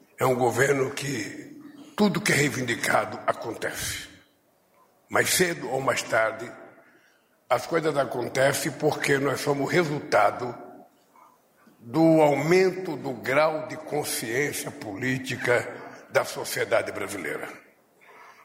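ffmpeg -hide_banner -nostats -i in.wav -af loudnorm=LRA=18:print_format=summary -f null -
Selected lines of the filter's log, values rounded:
Input Integrated:    -25.4 LUFS
Input True Peak:      -7.4 dBTP
Input LRA:             5.7 LU
Input Threshold:     -36.6 LUFS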